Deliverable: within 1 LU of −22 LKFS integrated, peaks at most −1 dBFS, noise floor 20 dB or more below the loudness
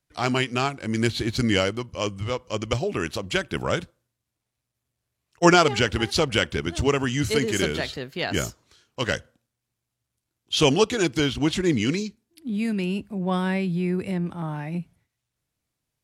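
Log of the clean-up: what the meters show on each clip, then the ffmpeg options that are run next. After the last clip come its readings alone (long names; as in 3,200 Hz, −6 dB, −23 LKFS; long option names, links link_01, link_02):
integrated loudness −24.5 LKFS; sample peak −2.0 dBFS; target loudness −22.0 LKFS
→ -af "volume=2.5dB,alimiter=limit=-1dB:level=0:latency=1"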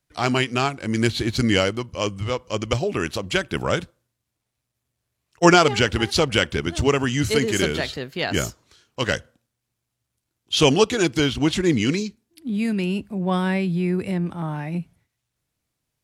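integrated loudness −22.0 LKFS; sample peak −1.0 dBFS; background noise floor −80 dBFS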